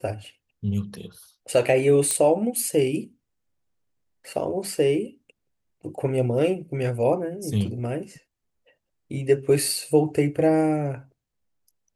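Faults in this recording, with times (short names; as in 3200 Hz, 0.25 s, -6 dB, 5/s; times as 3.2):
2.11 pop -9 dBFS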